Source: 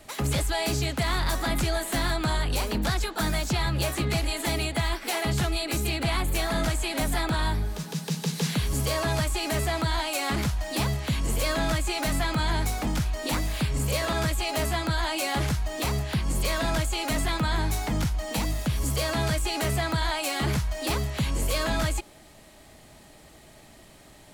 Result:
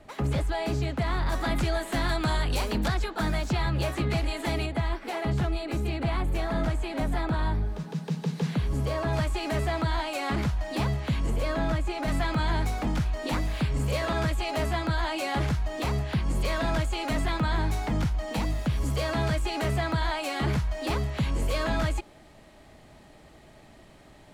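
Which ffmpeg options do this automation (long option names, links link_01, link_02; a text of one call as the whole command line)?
ffmpeg -i in.wav -af "asetnsamples=nb_out_samples=441:pad=0,asendcmd='1.32 lowpass f 2900;2.09 lowpass f 5600;2.88 lowpass f 2300;4.66 lowpass f 1100;9.13 lowpass f 2100;11.3 lowpass f 1200;12.08 lowpass f 2500',lowpass=frequency=1300:poles=1" out.wav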